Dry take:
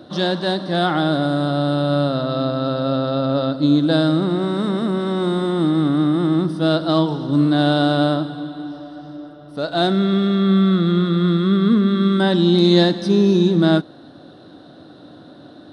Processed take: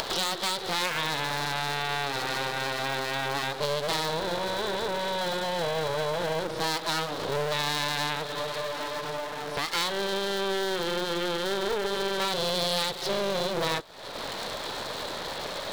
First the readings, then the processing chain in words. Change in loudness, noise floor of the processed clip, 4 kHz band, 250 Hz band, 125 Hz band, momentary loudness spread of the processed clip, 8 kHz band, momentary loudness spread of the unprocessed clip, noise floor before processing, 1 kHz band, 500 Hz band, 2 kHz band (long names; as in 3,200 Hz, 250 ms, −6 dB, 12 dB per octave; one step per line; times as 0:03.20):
−11.0 dB, −37 dBFS, −2.5 dB, −22.0 dB, −19.0 dB, 6 LU, can't be measured, 7 LU, −43 dBFS, −4.0 dB, −9.0 dB, −1.0 dB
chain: low-pass filter 4,300 Hz
upward compression, threshold −19 dBFS
high-pass filter 62 Hz 12 dB per octave
low-shelf EQ 290 Hz +7 dB
full-wave rectification
spectral tilt +4 dB per octave
downward compressor 3 to 1, threshold −28 dBFS, peak gain reduction 12.5 dB